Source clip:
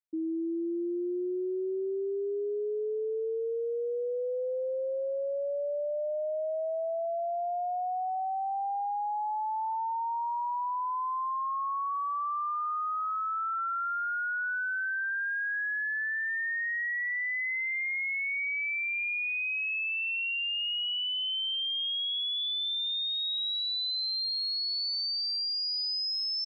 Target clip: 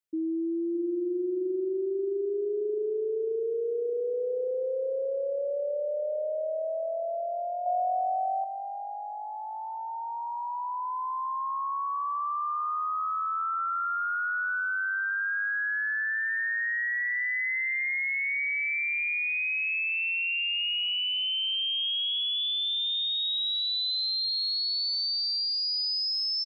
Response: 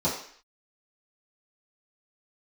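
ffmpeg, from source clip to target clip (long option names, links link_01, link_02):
-filter_complex "[0:a]equalizer=frequency=840:width=3.5:gain=-8.5,asplit=2[link_01][link_02];[link_02]adelay=616,lowpass=frequency=4200:poles=1,volume=-12dB,asplit=2[link_03][link_04];[link_04]adelay=616,lowpass=frequency=4200:poles=1,volume=0.52,asplit=2[link_05][link_06];[link_06]adelay=616,lowpass=frequency=4200:poles=1,volume=0.52,asplit=2[link_07][link_08];[link_08]adelay=616,lowpass=frequency=4200:poles=1,volume=0.52,asplit=2[link_09][link_10];[link_10]adelay=616,lowpass=frequency=4200:poles=1,volume=0.52[link_11];[link_01][link_03][link_05][link_07][link_09][link_11]amix=inputs=6:normalize=0,asettb=1/sr,asplit=3[link_12][link_13][link_14];[link_12]atrim=end=7.664[link_15];[link_13]atrim=start=7.66:end=8.44,asetpts=PTS-STARTPTS,afade=type=in:duration=0.004:curve=qsin,afade=type=out:start_time=0.776:duration=0.004:curve=qsin,acontrast=52[link_16];[link_14]atrim=start=8.436[link_17];[link_15][link_16]acrossfade=duration=0.004:curve1=hsin:curve2=qsin[link_18];[link_18][link_17]acrossfade=duration=0.004:curve1=qsin:curve2=hsin,volume=2.5dB"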